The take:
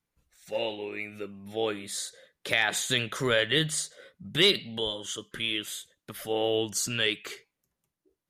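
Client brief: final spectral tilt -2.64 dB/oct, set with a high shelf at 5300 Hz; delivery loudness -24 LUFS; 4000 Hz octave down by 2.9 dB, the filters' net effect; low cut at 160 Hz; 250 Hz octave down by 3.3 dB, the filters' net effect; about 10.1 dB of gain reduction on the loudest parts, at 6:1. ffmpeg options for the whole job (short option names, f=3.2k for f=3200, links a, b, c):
-af "highpass=160,equalizer=f=250:t=o:g=-4,equalizer=f=4k:t=o:g=-6,highshelf=f=5.3k:g=6,acompressor=threshold=-31dB:ratio=6,volume=12dB"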